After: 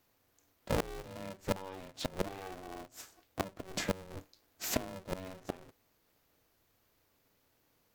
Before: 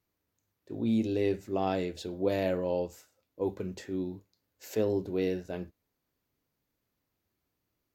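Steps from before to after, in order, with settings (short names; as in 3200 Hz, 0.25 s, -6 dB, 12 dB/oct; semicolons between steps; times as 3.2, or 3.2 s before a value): low shelf 210 Hz -5 dB; flipped gate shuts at -29 dBFS, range -25 dB; polarity switched at an audio rate 190 Hz; gain +10 dB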